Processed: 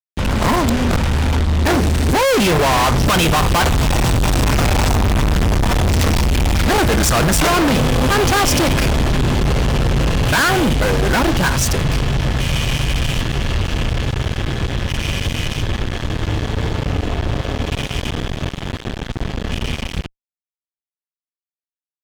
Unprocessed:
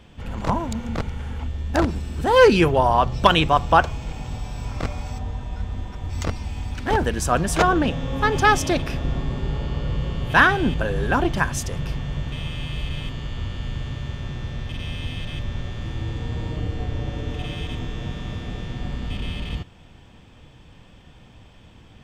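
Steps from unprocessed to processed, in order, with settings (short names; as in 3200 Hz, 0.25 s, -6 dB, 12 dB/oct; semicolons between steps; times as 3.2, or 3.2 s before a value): Doppler pass-by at 5.11, 17 m/s, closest 14 m; fuzz box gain 53 dB, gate -52 dBFS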